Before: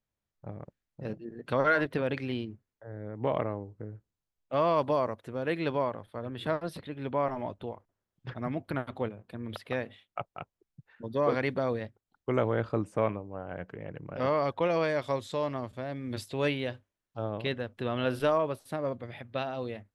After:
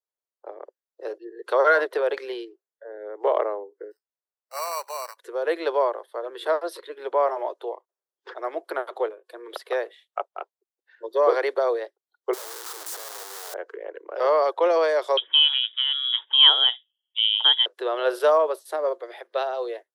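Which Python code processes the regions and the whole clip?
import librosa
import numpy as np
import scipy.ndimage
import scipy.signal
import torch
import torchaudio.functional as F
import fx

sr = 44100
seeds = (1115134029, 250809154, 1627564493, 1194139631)

y = fx.chain(x, sr, fx.highpass(hz=1500.0, slope=12),
    fx.peak_eq(hz=4400.0, db=-8.0, octaves=1.1),
    fx.sample_hold(seeds[0], rate_hz=3400.0, jitter_pct=0), at=(3.91, 5.17))
y = fx.chain(y, sr, fx.clip_1bit(),
    fx.spectral_comp(ratio=2.0), at=(12.33, 13.54))
y = fx.chain(y, sr, fx.highpass(hz=190.0, slope=12),
    fx.peak_eq(hz=430.0, db=14.5, octaves=1.6),
    fx.freq_invert(carrier_hz=3600), at=(15.17, 17.66))
y = scipy.signal.sosfilt(scipy.signal.butter(12, 360.0, 'highpass', fs=sr, output='sos'), y)
y = fx.noise_reduce_blind(y, sr, reduce_db=15)
y = fx.peak_eq(y, sr, hz=2500.0, db=-10.0, octaves=0.76)
y = F.gain(torch.from_numpy(y), 8.5).numpy()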